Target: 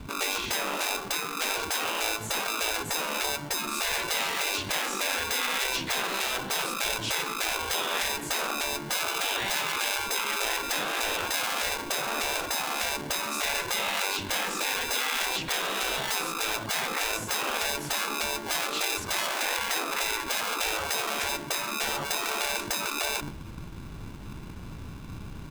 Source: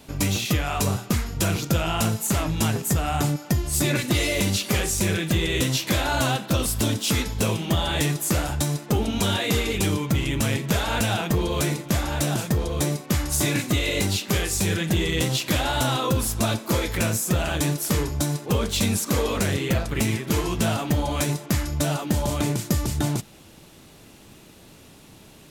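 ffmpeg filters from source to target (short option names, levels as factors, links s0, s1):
-filter_complex "[0:a]aemphasis=mode=reproduction:type=riaa,asplit=2[s0][s1];[s1]adelay=120,highpass=300,lowpass=3400,asoftclip=type=hard:threshold=0.0944,volume=0.282[s2];[s0][s2]amix=inputs=2:normalize=0,acrossover=split=600|7100[s3][s4][s5];[s3]acrusher=samples=35:mix=1:aa=0.000001[s6];[s6][s4][s5]amix=inputs=3:normalize=0,afftfilt=real='re*lt(hypot(re,im),0.158)':imag='im*lt(hypot(re,im),0.158)':win_size=1024:overlap=0.75"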